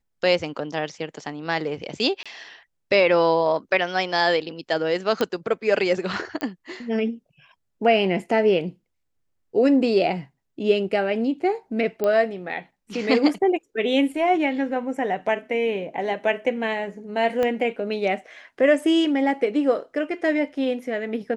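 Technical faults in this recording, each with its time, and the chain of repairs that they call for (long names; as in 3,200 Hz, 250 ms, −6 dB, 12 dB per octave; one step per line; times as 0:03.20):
0:02.23–0:02.26: drop-out 26 ms
0:05.21: click −9 dBFS
0:06.41: click −16 dBFS
0:12.04: click −12 dBFS
0:17.43: click −13 dBFS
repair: click removal
repair the gap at 0:02.23, 26 ms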